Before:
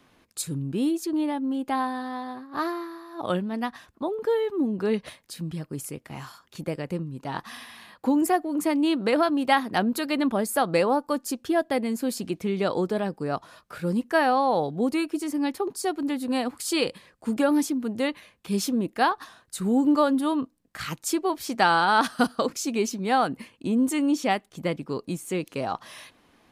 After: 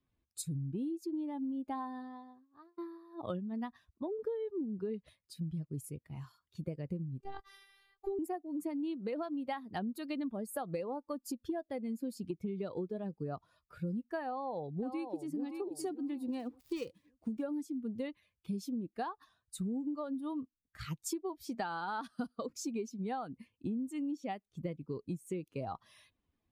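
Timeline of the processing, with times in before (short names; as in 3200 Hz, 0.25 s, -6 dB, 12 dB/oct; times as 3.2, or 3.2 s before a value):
1.77–2.78 fade out
7.2–8.19 robotiser 393 Hz
14.25–15.38 echo throw 0.57 s, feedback 35%, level -6.5 dB
16.28–17.43 switching dead time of 0.087 ms
whole clip: per-bin expansion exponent 1.5; tilt shelf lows +5 dB, about 940 Hz; compressor 12:1, threshold -32 dBFS; gain -2.5 dB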